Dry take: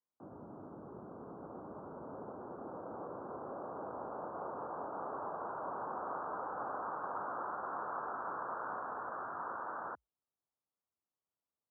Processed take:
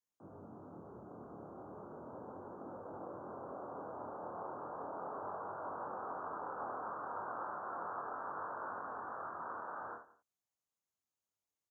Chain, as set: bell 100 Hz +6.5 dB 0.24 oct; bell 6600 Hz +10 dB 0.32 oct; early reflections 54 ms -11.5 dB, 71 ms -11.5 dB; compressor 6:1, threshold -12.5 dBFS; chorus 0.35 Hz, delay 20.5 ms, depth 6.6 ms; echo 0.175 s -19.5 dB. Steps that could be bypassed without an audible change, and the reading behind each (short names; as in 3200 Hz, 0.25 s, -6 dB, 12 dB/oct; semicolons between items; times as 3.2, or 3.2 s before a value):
bell 6600 Hz: input band ends at 1800 Hz; compressor, threshold -12.5 dBFS: input peak -26.5 dBFS